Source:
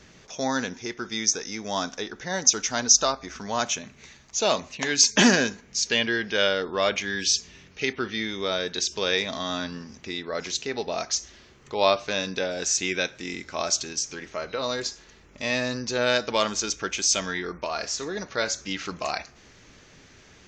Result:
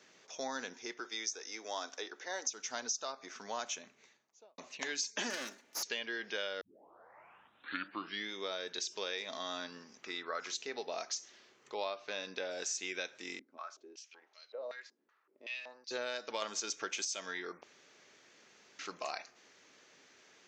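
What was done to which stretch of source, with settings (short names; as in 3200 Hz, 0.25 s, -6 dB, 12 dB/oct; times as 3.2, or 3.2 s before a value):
1–2.47 HPF 280 Hz 24 dB/oct
3.69–4.58 studio fade out
5.3–5.83 minimum comb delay 3.4 ms
6.61 tape start 1.69 s
10.03–10.55 bell 1300 Hz +12 dB 0.69 oct
11.84–12.46 LPF 5000 Hz
13.39–15.91 stepped band-pass 5.3 Hz 250–4200 Hz
16.42–17.05 gain +6 dB
17.63–18.79 room tone
whole clip: HPF 360 Hz 12 dB/oct; compressor 6:1, threshold -26 dBFS; gain -8.5 dB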